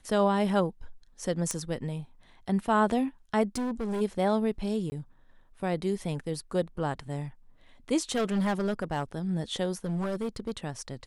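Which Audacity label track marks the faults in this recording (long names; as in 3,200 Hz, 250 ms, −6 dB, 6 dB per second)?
1.510000	1.510000	click −16 dBFS
3.550000	4.020000	clipping −28 dBFS
4.900000	4.920000	drop-out 20 ms
8.100000	9.030000	clipping −23.5 dBFS
9.850000	10.520000	clipping −27 dBFS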